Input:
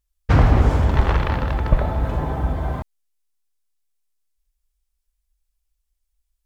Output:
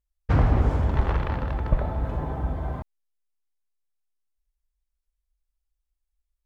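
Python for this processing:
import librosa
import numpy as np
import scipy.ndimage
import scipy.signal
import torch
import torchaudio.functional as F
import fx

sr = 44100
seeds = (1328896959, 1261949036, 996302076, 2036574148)

y = fx.high_shelf(x, sr, hz=2300.0, db=-7.0)
y = F.gain(torch.from_numpy(y), -5.5).numpy()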